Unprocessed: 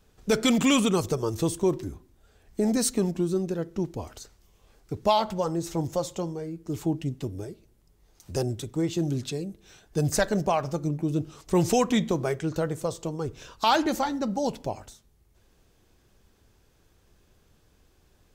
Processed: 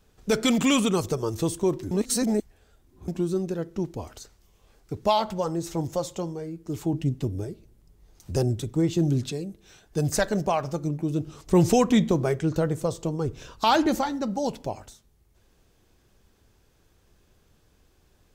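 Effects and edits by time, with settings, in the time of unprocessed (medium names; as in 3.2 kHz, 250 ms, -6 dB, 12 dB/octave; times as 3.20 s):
1.91–3.08 s: reverse
6.93–9.32 s: bass shelf 320 Hz +6.5 dB
11.26–14.01 s: bass shelf 430 Hz +5.5 dB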